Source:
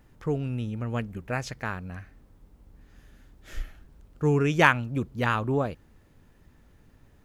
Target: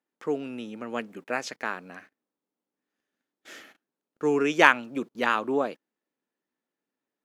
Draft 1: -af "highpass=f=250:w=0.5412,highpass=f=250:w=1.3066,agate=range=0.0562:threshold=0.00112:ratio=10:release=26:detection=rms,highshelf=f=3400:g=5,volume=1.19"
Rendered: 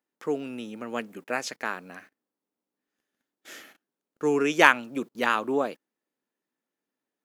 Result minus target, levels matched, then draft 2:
8 kHz band +3.5 dB
-af "highpass=f=250:w=0.5412,highpass=f=250:w=1.3066,highshelf=f=9100:g=-11.5,agate=range=0.0562:threshold=0.00112:ratio=10:release=26:detection=rms,highshelf=f=3400:g=5,volume=1.19"

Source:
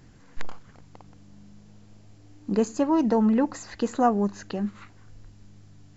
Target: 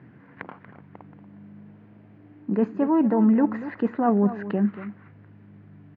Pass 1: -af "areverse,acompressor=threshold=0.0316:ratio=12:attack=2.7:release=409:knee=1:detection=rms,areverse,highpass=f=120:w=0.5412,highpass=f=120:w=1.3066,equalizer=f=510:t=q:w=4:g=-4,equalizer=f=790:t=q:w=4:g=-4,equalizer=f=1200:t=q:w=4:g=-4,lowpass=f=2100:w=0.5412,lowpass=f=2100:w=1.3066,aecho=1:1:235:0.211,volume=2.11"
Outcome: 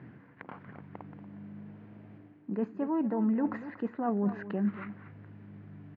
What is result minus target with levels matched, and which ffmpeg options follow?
compression: peak gain reduction +9.5 dB
-af "areverse,acompressor=threshold=0.106:ratio=12:attack=2.7:release=409:knee=1:detection=rms,areverse,highpass=f=120:w=0.5412,highpass=f=120:w=1.3066,equalizer=f=510:t=q:w=4:g=-4,equalizer=f=790:t=q:w=4:g=-4,equalizer=f=1200:t=q:w=4:g=-4,lowpass=f=2100:w=0.5412,lowpass=f=2100:w=1.3066,aecho=1:1:235:0.211,volume=2.11"

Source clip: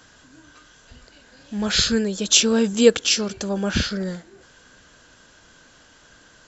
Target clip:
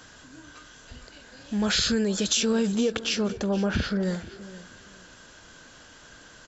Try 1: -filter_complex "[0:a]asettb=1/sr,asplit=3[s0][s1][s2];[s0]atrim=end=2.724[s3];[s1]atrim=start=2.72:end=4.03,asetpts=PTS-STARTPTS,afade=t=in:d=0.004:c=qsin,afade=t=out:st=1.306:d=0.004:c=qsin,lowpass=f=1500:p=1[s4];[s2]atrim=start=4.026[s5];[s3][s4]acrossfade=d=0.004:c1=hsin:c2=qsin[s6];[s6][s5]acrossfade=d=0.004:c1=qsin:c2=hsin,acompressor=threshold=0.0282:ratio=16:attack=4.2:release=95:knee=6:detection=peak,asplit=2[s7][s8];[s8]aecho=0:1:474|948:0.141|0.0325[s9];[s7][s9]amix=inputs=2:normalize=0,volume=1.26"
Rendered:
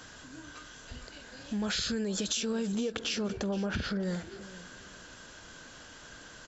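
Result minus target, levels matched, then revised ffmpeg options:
compression: peak gain reduction +8.5 dB
-filter_complex "[0:a]asettb=1/sr,asplit=3[s0][s1][s2];[s0]atrim=end=2.724[s3];[s1]atrim=start=2.72:end=4.03,asetpts=PTS-STARTPTS,afade=t=in:d=0.004:c=qsin,afade=t=out:st=1.306:d=0.004:c=qsin,lowpass=f=1500:p=1[s4];[s2]atrim=start=4.026[s5];[s3][s4]acrossfade=d=0.004:c1=hsin:c2=qsin[s6];[s6][s5]acrossfade=d=0.004:c1=qsin:c2=hsin,acompressor=threshold=0.0794:ratio=16:attack=4.2:release=95:knee=6:detection=peak,asplit=2[s7][s8];[s8]aecho=0:1:474|948:0.141|0.0325[s9];[s7][s9]amix=inputs=2:normalize=0,volume=1.26"

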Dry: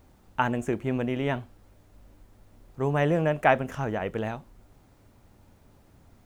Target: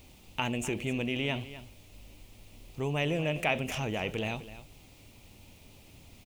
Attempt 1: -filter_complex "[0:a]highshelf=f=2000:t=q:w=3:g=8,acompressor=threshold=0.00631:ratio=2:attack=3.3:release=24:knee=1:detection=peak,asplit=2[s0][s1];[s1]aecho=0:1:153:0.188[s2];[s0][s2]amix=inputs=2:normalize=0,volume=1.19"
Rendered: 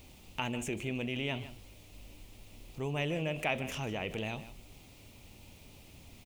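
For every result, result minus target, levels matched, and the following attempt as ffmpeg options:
echo 99 ms early; compression: peak gain reduction +4 dB
-filter_complex "[0:a]highshelf=f=2000:t=q:w=3:g=8,acompressor=threshold=0.00631:ratio=2:attack=3.3:release=24:knee=1:detection=peak,asplit=2[s0][s1];[s1]aecho=0:1:252:0.188[s2];[s0][s2]amix=inputs=2:normalize=0,volume=1.19"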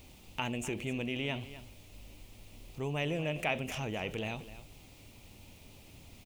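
compression: peak gain reduction +4 dB
-filter_complex "[0:a]highshelf=f=2000:t=q:w=3:g=8,acompressor=threshold=0.015:ratio=2:attack=3.3:release=24:knee=1:detection=peak,asplit=2[s0][s1];[s1]aecho=0:1:252:0.188[s2];[s0][s2]amix=inputs=2:normalize=0,volume=1.19"

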